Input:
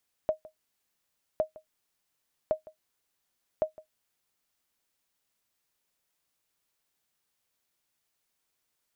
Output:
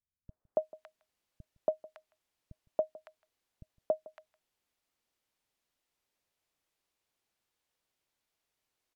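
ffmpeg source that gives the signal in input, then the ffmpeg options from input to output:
-f lavfi -i "aevalsrc='0.141*(sin(2*PI*625*mod(t,1.11))*exp(-6.91*mod(t,1.11)/0.12)+0.0891*sin(2*PI*625*max(mod(t,1.11)-0.16,0))*exp(-6.91*max(mod(t,1.11)-0.16,0)/0.12))':d=4.44:s=44100"
-filter_complex "[0:a]aemphasis=mode=reproduction:type=cd,acrossover=split=170|1400[a][b][c];[b]adelay=280[d];[c]adelay=560[e];[a][d][e]amix=inputs=3:normalize=0"

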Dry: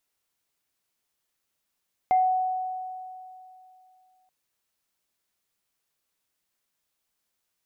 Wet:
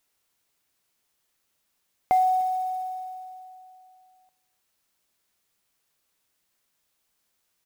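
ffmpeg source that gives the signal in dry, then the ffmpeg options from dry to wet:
-f lavfi -i "aevalsrc='0.15*pow(10,-3*t/2.75)*sin(2*PI*744*t)+0.0158*pow(10,-3*t/0.28)*sin(2*PI*2090*t)':d=2.18:s=44100"
-filter_complex "[0:a]asplit=2[a][b];[b]acompressor=threshold=-32dB:ratio=12,volume=-2dB[c];[a][c]amix=inputs=2:normalize=0,acrusher=bits=7:mode=log:mix=0:aa=0.000001,aecho=1:1:299:0.0668"

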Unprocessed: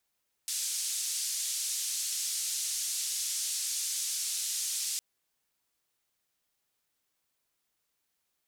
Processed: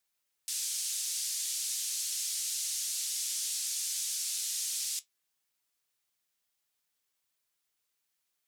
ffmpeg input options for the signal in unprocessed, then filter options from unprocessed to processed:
-f lavfi -i "anoisesrc=c=white:d=4.51:r=44100:seed=1,highpass=f=5500,lowpass=f=8000,volume=-19.9dB"
-af "tiltshelf=f=1.2k:g=-3.5,flanger=delay=6.2:depth=4.6:regen=72:speed=0.37:shape=sinusoidal"

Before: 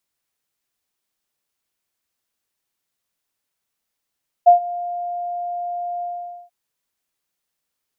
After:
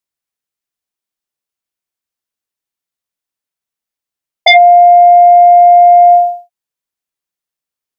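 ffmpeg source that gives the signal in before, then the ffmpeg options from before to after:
-f lavfi -i "aevalsrc='0.631*sin(2*PI*703*t)':d=2.037:s=44100,afade=t=in:d=0.019,afade=t=out:st=0.019:d=0.113:silence=0.106,afade=t=out:st=1.56:d=0.477"
-af "agate=range=-33dB:threshold=-27dB:ratio=3:detection=peak,aeval=exprs='0.631*sin(PI/2*3.98*val(0)/0.631)':c=same,alimiter=level_in=11dB:limit=-1dB:release=50:level=0:latency=1"

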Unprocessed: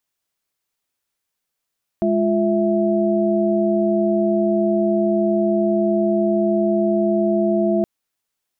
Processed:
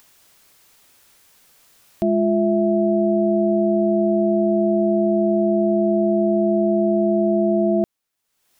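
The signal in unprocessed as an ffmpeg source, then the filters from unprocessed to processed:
-f lavfi -i "aevalsrc='0.106*(sin(2*PI*207.65*t)+sin(2*PI*349.23*t)+sin(2*PI*659.26*t))':d=5.82:s=44100"
-af "acompressor=mode=upward:threshold=-34dB:ratio=2.5"

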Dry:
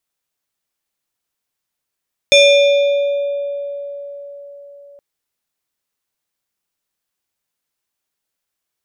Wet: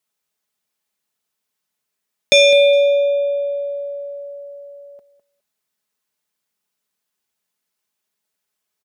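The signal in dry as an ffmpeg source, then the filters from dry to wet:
-f lavfi -i "aevalsrc='0.596*pow(10,-3*t/4.57)*sin(2*PI*568*t+1.3*pow(10,-3*t/2.47)*sin(2*PI*5.25*568*t))':d=2.67:s=44100"
-af "highpass=73,aecho=1:1:4.7:0.47,aecho=1:1:206|412:0.2|0.0339"

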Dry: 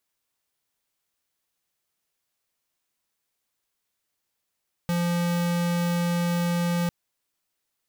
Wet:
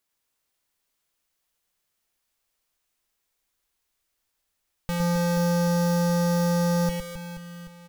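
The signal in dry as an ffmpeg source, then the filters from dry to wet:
-f lavfi -i "aevalsrc='0.0596*(2*lt(mod(173*t,1),0.5)-1)':d=2:s=44100"
-filter_complex "[0:a]asubboost=boost=5.5:cutoff=57,asplit=2[a][b];[b]aecho=0:1:110|264|479.6|781.4|1204:0.631|0.398|0.251|0.158|0.1[c];[a][c]amix=inputs=2:normalize=0"

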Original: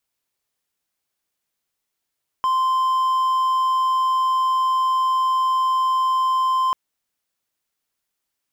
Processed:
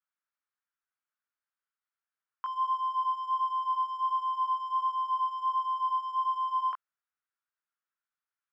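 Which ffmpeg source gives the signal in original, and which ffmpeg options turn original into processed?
-f lavfi -i "aevalsrc='0.188*(1-4*abs(mod(1040*t+0.25,1)-0.5))':d=4.29:s=44100"
-af "flanger=delay=18.5:depth=2.3:speed=1.4,bandpass=f=1.4k:t=q:w=3.2:csg=0"

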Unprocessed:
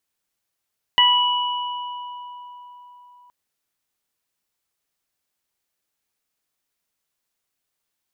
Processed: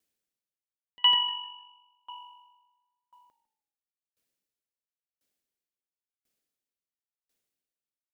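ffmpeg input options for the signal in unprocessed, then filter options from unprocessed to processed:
-f lavfi -i "aevalsrc='0.158*pow(10,-3*t/4.28)*sin(2*PI*981*t)+0.126*pow(10,-3*t/0.36)*sin(2*PI*1962*t)+0.251*pow(10,-3*t/2.1)*sin(2*PI*2943*t)':d=2.32:s=44100"
-filter_complex "[0:a]equalizer=f=250:t=o:w=1:g=5,equalizer=f=500:t=o:w=1:g=5,equalizer=f=1k:t=o:w=1:g=-8,asplit=2[a][b];[b]asplit=4[c][d][e][f];[c]adelay=152,afreqshift=-47,volume=-12.5dB[g];[d]adelay=304,afreqshift=-94,volume=-20.7dB[h];[e]adelay=456,afreqshift=-141,volume=-28.9dB[i];[f]adelay=608,afreqshift=-188,volume=-37dB[j];[g][h][i][j]amix=inputs=4:normalize=0[k];[a][k]amix=inputs=2:normalize=0,aeval=exprs='val(0)*pow(10,-37*if(lt(mod(0.96*n/s,1),2*abs(0.96)/1000),1-mod(0.96*n/s,1)/(2*abs(0.96)/1000),(mod(0.96*n/s,1)-2*abs(0.96)/1000)/(1-2*abs(0.96)/1000))/20)':c=same"

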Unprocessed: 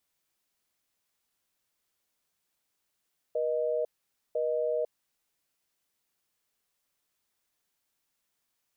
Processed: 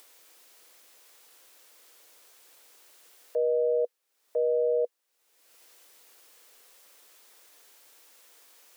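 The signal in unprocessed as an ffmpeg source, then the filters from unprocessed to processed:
-f lavfi -i "aevalsrc='0.0355*(sin(2*PI*480*t)+sin(2*PI*620*t))*clip(min(mod(t,1),0.5-mod(t,1))/0.005,0,1)':d=1.63:s=44100"
-af "acompressor=mode=upward:threshold=-38dB:ratio=2.5,highpass=f=310:w=0.5412,highpass=f=310:w=1.3066,equalizer=f=490:w=5.9:g=6.5"

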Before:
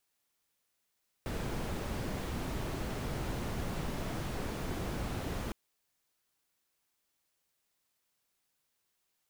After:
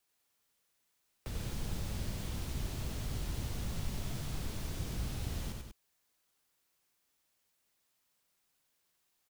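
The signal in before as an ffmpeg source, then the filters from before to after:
-f lavfi -i "anoisesrc=c=brown:a=0.0741:d=4.26:r=44100:seed=1"
-filter_complex "[0:a]acrossover=split=160|3000[a][b][c];[b]acompressor=threshold=-50dB:ratio=6[d];[a][d][c]amix=inputs=3:normalize=0,asplit=2[e][f];[f]aecho=0:1:93.29|192.4:0.631|0.398[g];[e][g]amix=inputs=2:normalize=0"

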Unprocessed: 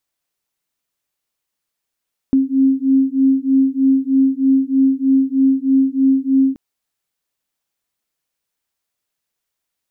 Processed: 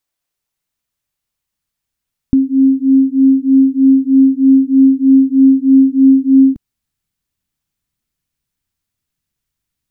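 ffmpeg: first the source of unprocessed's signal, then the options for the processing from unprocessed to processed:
-f lavfi -i "aevalsrc='0.188*(sin(2*PI*266*t)+sin(2*PI*269.2*t))':d=4.23:s=44100"
-af "asubboost=boost=7.5:cutoff=190"

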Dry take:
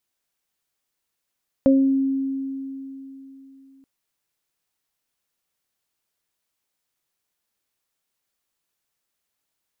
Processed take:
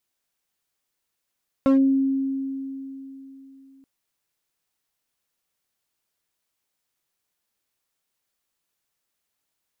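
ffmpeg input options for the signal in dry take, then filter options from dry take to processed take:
-f lavfi -i "aevalsrc='0.251*pow(10,-3*t/3.44)*sin(2*PI*270*t)+0.211*pow(10,-3*t/0.39)*sin(2*PI*540*t)':d=2.18:s=44100"
-af "volume=14dB,asoftclip=hard,volume=-14dB"

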